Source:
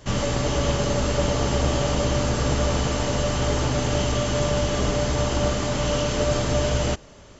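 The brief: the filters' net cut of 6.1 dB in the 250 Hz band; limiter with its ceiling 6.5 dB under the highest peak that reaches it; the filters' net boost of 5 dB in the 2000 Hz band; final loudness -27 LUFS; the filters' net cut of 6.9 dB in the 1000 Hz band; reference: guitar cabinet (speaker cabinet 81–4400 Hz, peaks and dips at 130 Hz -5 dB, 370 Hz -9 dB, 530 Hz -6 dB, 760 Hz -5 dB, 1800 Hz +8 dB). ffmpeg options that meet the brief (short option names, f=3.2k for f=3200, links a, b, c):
-af "equalizer=f=250:t=o:g=-5,equalizer=f=1k:t=o:g=-8,equalizer=f=2k:t=o:g=3.5,alimiter=limit=-17.5dB:level=0:latency=1,highpass=81,equalizer=f=130:t=q:w=4:g=-5,equalizer=f=370:t=q:w=4:g=-9,equalizer=f=530:t=q:w=4:g=-6,equalizer=f=760:t=q:w=4:g=-5,equalizer=f=1.8k:t=q:w=4:g=8,lowpass=f=4.4k:w=0.5412,lowpass=f=4.4k:w=1.3066,volume=2.5dB"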